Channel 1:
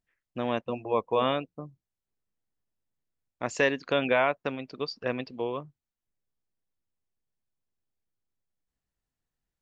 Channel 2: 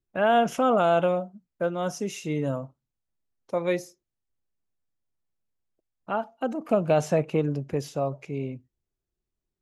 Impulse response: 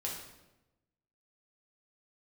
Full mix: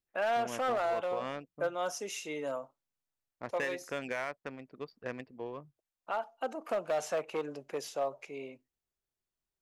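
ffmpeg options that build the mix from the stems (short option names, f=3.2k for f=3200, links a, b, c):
-filter_complex "[0:a]adynamicequalizer=threshold=0.00562:dfrequency=1900:dqfactor=2.4:tfrequency=1900:tqfactor=2.4:attack=5:release=100:ratio=0.375:range=4:mode=boostabove:tftype=bell,adynamicsmooth=sensitivity=2:basefreq=1.6k,volume=-9dB[a];[1:a]asoftclip=type=hard:threshold=-18dB,highpass=560,asoftclip=type=tanh:threshold=-17.5dB,volume=-1.5dB[b];[a][b]amix=inputs=2:normalize=0,alimiter=limit=-23.5dB:level=0:latency=1:release=471"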